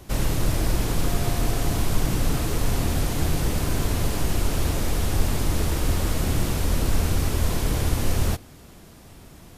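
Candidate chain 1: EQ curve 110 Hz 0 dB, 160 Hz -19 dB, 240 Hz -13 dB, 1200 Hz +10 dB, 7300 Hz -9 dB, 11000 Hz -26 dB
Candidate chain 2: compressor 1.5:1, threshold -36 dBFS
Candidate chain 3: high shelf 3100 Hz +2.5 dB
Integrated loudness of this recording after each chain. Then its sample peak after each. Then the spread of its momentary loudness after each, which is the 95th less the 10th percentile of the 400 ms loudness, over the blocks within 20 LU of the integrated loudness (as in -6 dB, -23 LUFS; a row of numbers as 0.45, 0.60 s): -26.0, -32.0, -25.0 LUFS; -7.5, -15.5, -7.0 dBFS; 1, 4, 1 LU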